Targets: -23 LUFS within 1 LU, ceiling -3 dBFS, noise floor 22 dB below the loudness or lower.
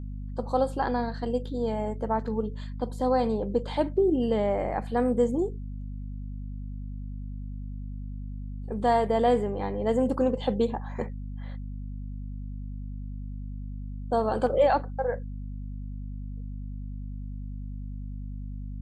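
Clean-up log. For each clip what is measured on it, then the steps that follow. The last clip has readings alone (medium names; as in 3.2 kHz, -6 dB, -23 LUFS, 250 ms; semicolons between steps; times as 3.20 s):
hum 50 Hz; highest harmonic 250 Hz; hum level -33 dBFS; loudness -30.0 LUFS; peak level -11.5 dBFS; loudness target -23.0 LUFS
-> hum notches 50/100/150/200/250 Hz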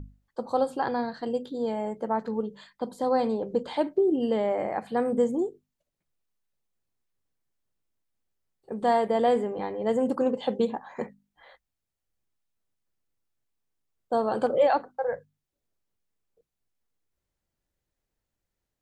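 hum not found; loudness -27.5 LUFS; peak level -11.5 dBFS; loudness target -23.0 LUFS
-> trim +4.5 dB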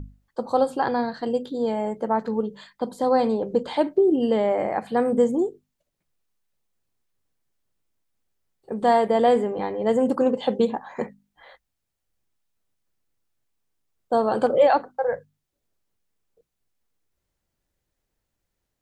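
loudness -23.0 LUFS; peak level -7.0 dBFS; noise floor -80 dBFS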